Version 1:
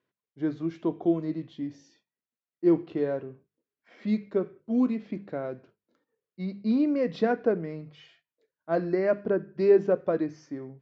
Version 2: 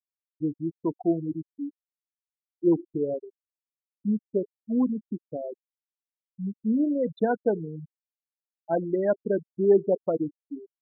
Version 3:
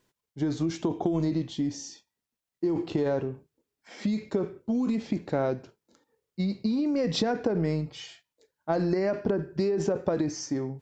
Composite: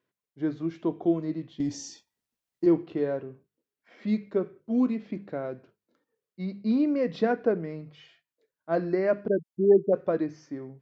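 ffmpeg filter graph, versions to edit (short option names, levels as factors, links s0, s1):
-filter_complex "[0:a]asplit=3[s0][s1][s2];[s0]atrim=end=1.602[s3];[2:a]atrim=start=1.598:end=2.662[s4];[s1]atrim=start=2.658:end=9.282[s5];[1:a]atrim=start=9.278:end=9.932[s6];[s2]atrim=start=9.928[s7];[s3][s4]acrossfade=d=0.004:c1=hsin:c2=hsin[s8];[s8][s5]acrossfade=d=0.004:c1=hsin:c2=hsin[s9];[s9][s6]acrossfade=d=0.004:c1=hsin:c2=hsin[s10];[s10][s7]acrossfade=d=0.004:c1=hsin:c2=hsin"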